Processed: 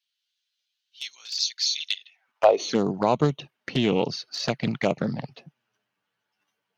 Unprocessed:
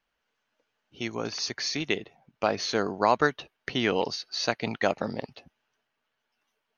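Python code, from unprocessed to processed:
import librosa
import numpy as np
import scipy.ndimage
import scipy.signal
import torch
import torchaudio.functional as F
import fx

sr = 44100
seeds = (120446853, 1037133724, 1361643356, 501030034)

p1 = fx.filter_sweep_highpass(x, sr, from_hz=3800.0, to_hz=140.0, start_s=2.03, end_s=2.81, q=3.1)
p2 = fx.env_flanger(p1, sr, rest_ms=10.5, full_db=-21.5)
p3 = fx.level_steps(p2, sr, step_db=10)
p4 = p2 + (p3 * 10.0 ** (-3.0 / 20.0))
y = fx.doppler_dist(p4, sr, depth_ms=0.19)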